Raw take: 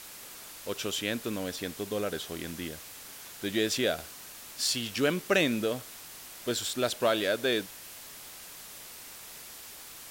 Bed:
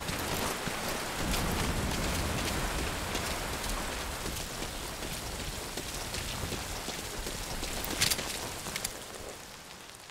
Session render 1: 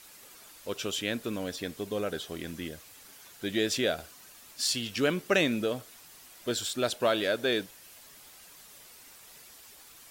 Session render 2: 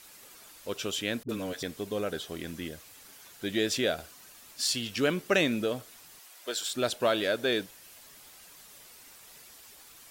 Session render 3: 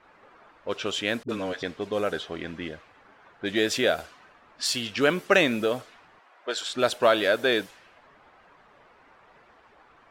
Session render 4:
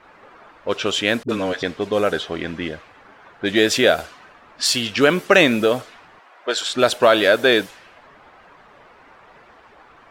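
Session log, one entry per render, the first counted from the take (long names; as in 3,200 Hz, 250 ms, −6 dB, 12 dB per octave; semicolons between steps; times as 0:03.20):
broadband denoise 8 dB, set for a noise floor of −47 dBFS
0:01.23–0:01.63: all-pass dispersion highs, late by 58 ms, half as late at 430 Hz; 0:06.20–0:06.71: high-pass filter 510 Hz
low-pass that shuts in the quiet parts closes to 1,200 Hz, open at −26.5 dBFS; parametric band 1,100 Hz +8 dB 3 octaves
level +8 dB; brickwall limiter −1 dBFS, peak gain reduction 3 dB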